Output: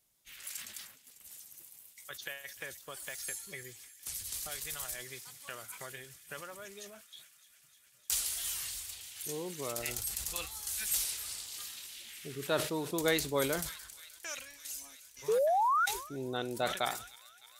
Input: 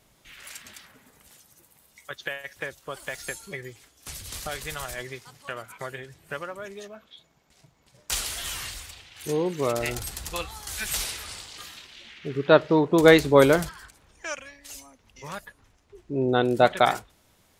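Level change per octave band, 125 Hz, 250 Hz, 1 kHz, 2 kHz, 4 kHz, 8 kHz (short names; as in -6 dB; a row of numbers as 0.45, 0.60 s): -14.5, -15.5, -6.5, -10.5, -6.0, -1.0 dB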